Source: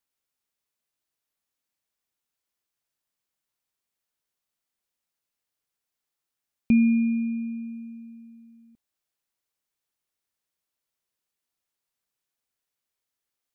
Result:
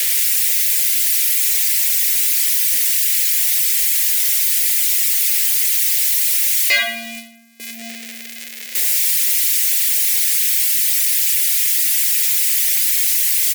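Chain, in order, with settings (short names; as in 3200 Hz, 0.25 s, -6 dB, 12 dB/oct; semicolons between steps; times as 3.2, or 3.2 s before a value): switching spikes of -27 dBFS; in parallel at -3 dB: negative-ratio compressor -38 dBFS, ratio -0.5; on the sum: reverb removal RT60 1.6 s; gate with hold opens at -27 dBFS; sine folder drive 18 dB, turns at -12 dBFS; ladder high-pass 410 Hz, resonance 65%; resonant high shelf 1500 Hz +10 dB, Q 3; on a send: feedback echo 87 ms, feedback 58%, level -12.5 dB; on the sum: mismatched tape noise reduction decoder only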